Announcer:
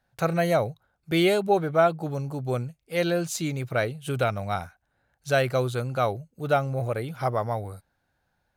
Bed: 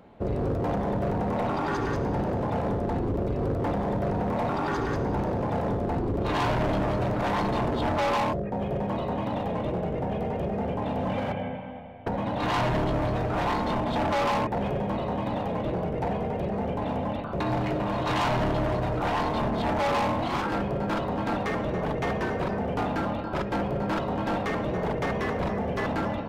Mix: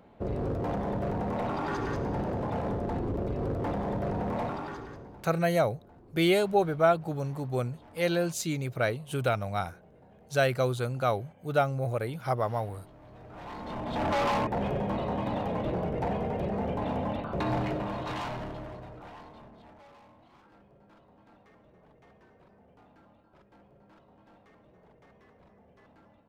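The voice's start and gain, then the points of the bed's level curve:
5.05 s, -2.5 dB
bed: 4.41 s -4 dB
5.4 s -27.5 dB
12.97 s -27.5 dB
14.09 s -2 dB
17.58 s -2 dB
20 s -31 dB

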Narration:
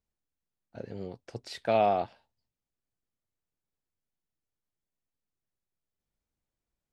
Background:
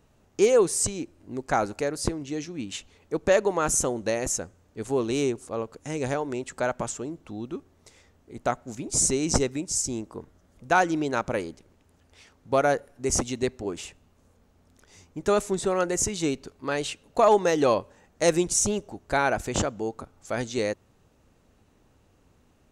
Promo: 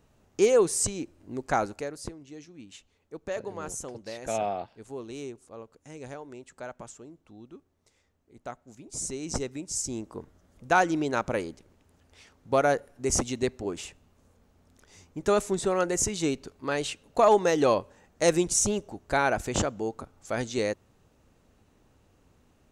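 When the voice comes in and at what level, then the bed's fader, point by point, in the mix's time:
2.60 s, -5.0 dB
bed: 1.57 s -1.5 dB
2.16 s -13 dB
8.84 s -13 dB
10.16 s -1 dB

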